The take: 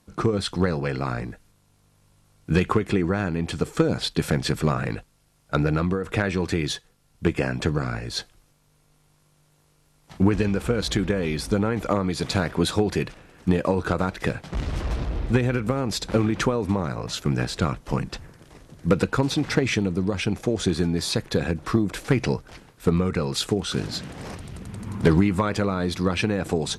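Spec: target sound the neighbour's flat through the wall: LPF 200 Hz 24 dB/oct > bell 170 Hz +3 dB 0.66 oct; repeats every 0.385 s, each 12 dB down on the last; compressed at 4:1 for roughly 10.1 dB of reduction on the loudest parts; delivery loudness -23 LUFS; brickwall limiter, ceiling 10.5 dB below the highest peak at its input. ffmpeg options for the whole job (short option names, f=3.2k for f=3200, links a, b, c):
-af "acompressor=threshold=-27dB:ratio=4,alimiter=limit=-23dB:level=0:latency=1,lowpass=f=200:w=0.5412,lowpass=f=200:w=1.3066,equalizer=f=170:t=o:w=0.66:g=3,aecho=1:1:385|770|1155:0.251|0.0628|0.0157,volume=14.5dB"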